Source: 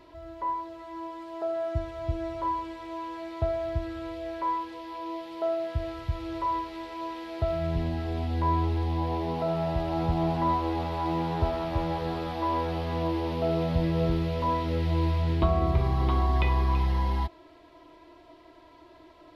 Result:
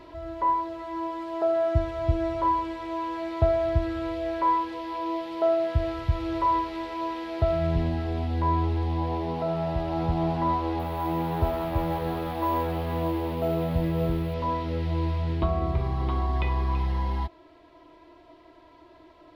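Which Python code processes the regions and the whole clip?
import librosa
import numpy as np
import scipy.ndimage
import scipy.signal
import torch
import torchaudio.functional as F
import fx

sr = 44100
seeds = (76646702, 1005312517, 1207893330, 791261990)

y = fx.chain(x, sr, fx.cvsd(bps=64000),
    fx.lowpass(hz=4600.0, slope=12),
    fx.resample_bad(factor=3, down='none', up='hold'), at=(10.79, 14.34))
y = fx.high_shelf(y, sr, hz=4600.0, db=-5.5)
y = fx.rider(y, sr, range_db=10, speed_s=2.0)
y = y * librosa.db_to_amplitude(1.5)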